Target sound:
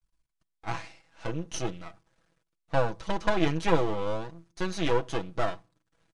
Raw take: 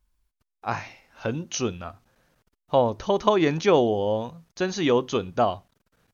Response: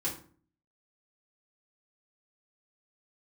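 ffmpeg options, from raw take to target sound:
-filter_complex "[0:a]aeval=exprs='max(val(0),0)':c=same,aresample=22050,aresample=44100,aecho=1:1:6.1:0.65,asplit=2[s0][s1];[1:a]atrim=start_sample=2205[s2];[s1][s2]afir=irnorm=-1:irlink=0,volume=0.0473[s3];[s0][s3]amix=inputs=2:normalize=0,volume=0.668"

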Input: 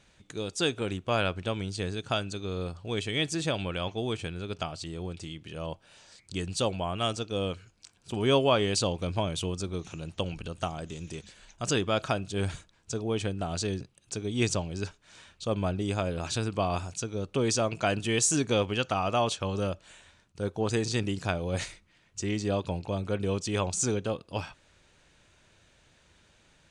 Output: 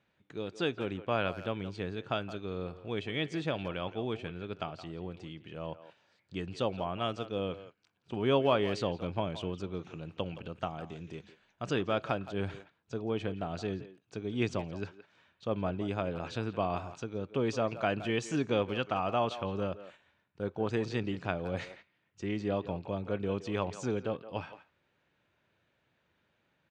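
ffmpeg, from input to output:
-filter_complex "[0:a]highpass=110,lowpass=2700,asplit=2[s0][s1];[s1]adelay=170,highpass=300,lowpass=3400,asoftclip=type=hard:threshold=0.1,volume=0.224[s2];[s0][s2]amix=inputs=2:normalize=0,agate=range=0.447:threshold=0.00282:ratio=16:detection=peak,volume=0.708"

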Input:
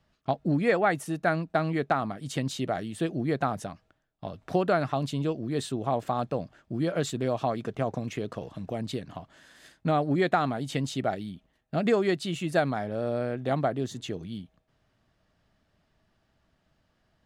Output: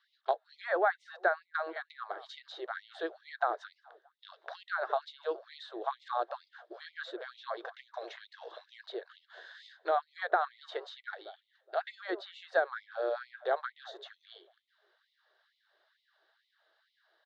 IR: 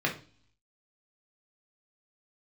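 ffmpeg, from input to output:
-filter_complex "[0:a]highpass=150,equalizer=f=1600:t=q:w=4:g=9,equalizer=f=2500:t=q:w=4:g=-9,equalizer=f=3800:t=q:w=4:g=10,lowpass=f=4700:w=0.5412,lowpass=f=4700:w=1.3066,acrossover=split=370|1500[s0][s1][s2];[s0]acompressor=threshold=0.00794:ratio=4[s3];[s1]acompressor=threshold=0.0708:ratio=4[s4];[s2]acompressor=threshold=0.00282:ratio=4[s5];[s3][s4][s5]amix=inputs=3:normalize=0,asplit=2[s6][s7];[s7]adelay=209,lowpass=f=1100:p=1,volume=0.141,asplit=2[s8][s9];[s9]adelay=209,lowpass=f=1100:p=1,volume=0.52,asplit=2[s10][s11];[s11]adelay=209,lowpass=f=1100:p=1,volume=0.52,asplit=2[s12][s13];[s13]adelay=209,lowpass=f=1100:p=1,volume=0.52,asplit=2[s14][s15];[s15]adelay=209,lowpass=f=1100:p=1,volume=0.52[s16];[s8][s10][s12][s14][s16]amix=inputs=5:normalize=0[s17];[s6][s17]amix=inputs=2:normalize=0,afftfilt=real='re*gte(b*sr/1024,320*pow(2000/320,0.5+0.5*sin(2*PI*2.2*pts/sr)))':imag='im*gte(b*sr/1024,320*pow(2000/320,0.5+0.5*sin(2*PI*2.2*pts/sr)))':win_size=1024:overlap=0.75"

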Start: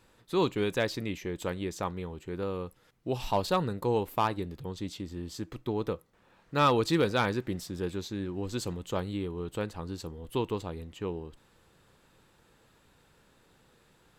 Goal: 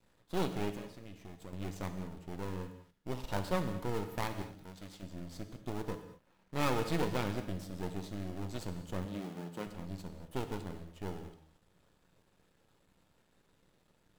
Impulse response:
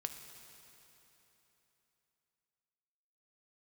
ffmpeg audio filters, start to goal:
-filter_complex "[0:a]asplit=2[s0][s1];[s1]acrusher=samples=24:mix=1:aa=0.000001:lfo=1:lforange=14.4:lforate=2.5,volume=0.668[s2];[s0][s2]amix=inputs=2:normalize=0,asettb=1/sr,asplit=3[s3][s4][s5];[s3]atrim=end=0.764[s6];[s4]atrim=start=0.76:end=1.53,asetpts=PTS-STARTPTS,afade=t=in:d=0.004:c=qsin,afade=t=out:st=0.766:d=0.004:c=qsin,acompressor=threshold=0.0141:ratio=5[s7];[s5]atrim=start=1.526[s8];[s6][s7]acrossfade=d=0.004:c1=hsin:c2=qsin[s9];[s9][s8]acrossfade=d=0.004:c1=qsin:c2=hsin,aeval=exprs='max(val(0),0)':c=same,asettb=1/sr,asplit=3[s10][s11][s12];[s10]atrim=end=4.424[s13];[s11]atrim=start=4.42:end=5.03,asetpts=PTS-STARTPTS,afade=t=in:d=0.004:c=qsin,afade=t=out:st=0.606:d=0.004:c=qsin,lowshelf=f=450:g=-11[s14];[s12]atrim=start=5.026[s15];[s13][s14]acrossfade=d=0.004:c1=hsin:c2=qsin[s16];[s16][s15]acrossfade=d=0.004:c1=qsin:c2=hsin,asettb=1/sr,asplit=3[s17][s18][s19];[s17]atrim=end=9.054[s20];[s18]atrim=start=9.05:end=9.67,asetpts=PTS-STARTPTS,afade=t=in:d=0.004:c=qsin,afade=t=out:st=0.616:d=0.004:c=qsin,highpass=f=150:w=0.5412,highpass=f=150:w=1.3066[s21];[s19]atrim=start=9.666[s22];[s20][s21]acrossfade=d=0.004:c1=hsin:c2=qsin[s23];[s23][s22]acrossfade=d=0.004:c1=qsin:c2=hsin[s24];[1:a]atrim=start_sample=2205,afade=t=out:st=0.36:d=0.01,atrim=end_sample=16317,asetrate=57330,aresample=44100[s25];[s24][s25]afir=irnorm=-1:irlink=0,volume=0.75"

